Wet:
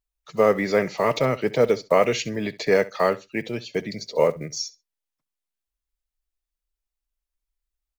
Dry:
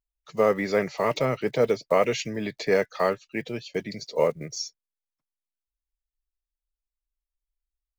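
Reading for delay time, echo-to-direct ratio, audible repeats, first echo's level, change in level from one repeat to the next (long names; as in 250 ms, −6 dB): 66 ms, −19.0 dB, 2, −19.0 dB, −16.0 dB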